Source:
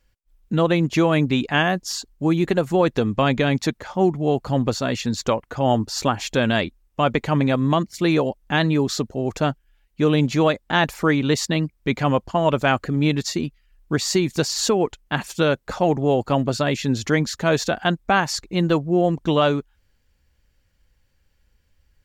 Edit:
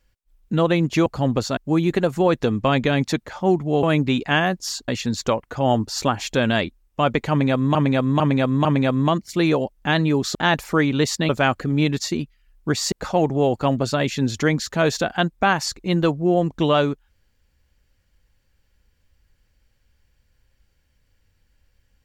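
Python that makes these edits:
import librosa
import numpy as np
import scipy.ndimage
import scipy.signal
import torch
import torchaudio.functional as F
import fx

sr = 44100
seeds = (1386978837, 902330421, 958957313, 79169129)

y = fx.edit(x, sr, fx.swap(start_s=1.06, length_s=1.05, other_s=4.37, other_length_s=0.51),
    fx.repeat(start_s=7.3, length_s=0.45, count=4),
    fx.cut(start_s=9.0, length_s=1.65),
    fx.cut(start_s=11.59, length_s=0.94),
    fx.cut(start_s=14.16, length_s=1.43), tone=tone)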